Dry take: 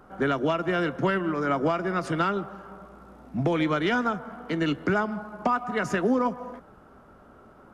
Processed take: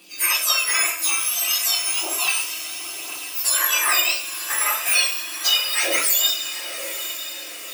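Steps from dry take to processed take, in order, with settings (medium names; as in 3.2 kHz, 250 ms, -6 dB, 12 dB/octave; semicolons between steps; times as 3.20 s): spectrum inverted on a logarithmic axis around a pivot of 1.9 kHz; 0.95–2.27 s: static phaser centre 490 Hz, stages 6; echo that smears into a reverb 905 ms, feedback 56%, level -10.5 dB; reverberation, pre-delay 6 ms, DRR -1 dB; phaser 0.32 Hz, delay 4.9 ms, feedback 28%; trim +8.5 dB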